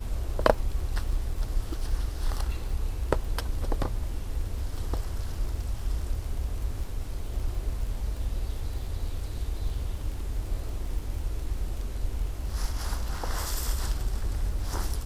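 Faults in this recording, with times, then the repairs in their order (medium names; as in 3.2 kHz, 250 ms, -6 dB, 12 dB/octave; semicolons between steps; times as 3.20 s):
crackle 34 per s -36 dBFS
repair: de-click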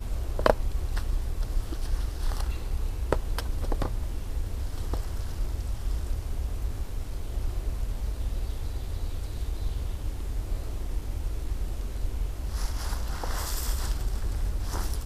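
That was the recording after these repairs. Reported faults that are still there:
nothing left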